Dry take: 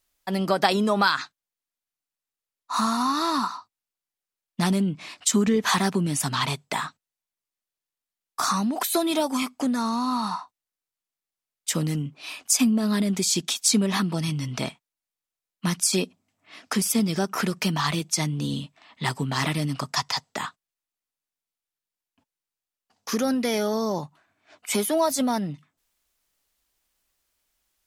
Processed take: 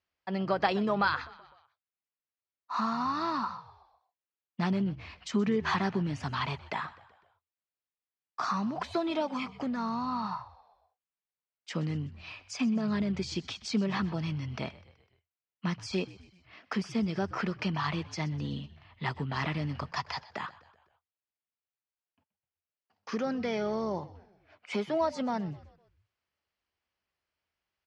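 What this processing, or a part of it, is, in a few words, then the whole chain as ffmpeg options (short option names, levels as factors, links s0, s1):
frequency-shifting delay pedal into a guitar cabinet: -filter_complex "[0:a]asplit=5[s0][s1][s2][s3][s4];[s1]adelay=126,afreqshift=-63,volume=0.112[s5];[s2]adelay=252,afreqshift=-126,volume=0.0596[s6];[s3]adelay=378,afreqshift=-189,volume=0.0316[s7];[s4]adelay=504,afreqshift=-252,volume=0.0168[s8];[s0][s5][s6][s7][s8]amix=inputs=5:normalize=0,highpass=78,equalizer=f=84:t=q:w=4:g=9,equalizer=f=270:t=q:w=4:g=-4,equalizer=f=3700:t=q:w=4:g=-8,lowpass=f=4300:w=0.5412,lowpass=f=4300:w=1.3066,volume=0.501"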